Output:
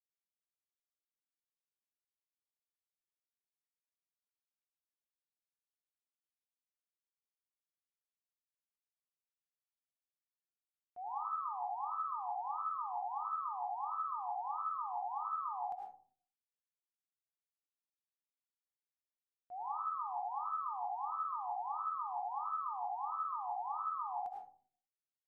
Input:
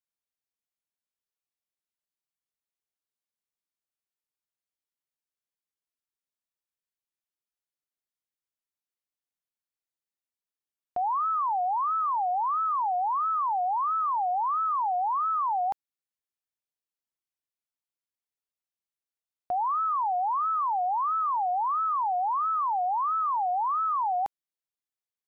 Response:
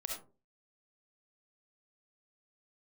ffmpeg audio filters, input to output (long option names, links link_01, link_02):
-filter_complex "[0:a]agate=range=-33dB:threshold=-13dB:ratio=3:detection=peak[link_01];[1:a]atrim=start_sample=2205,asetrate=28224,aresample=44100[link_02];[link_01][link_02]afir=irnorm=-1:irlink=0,volume=7dB"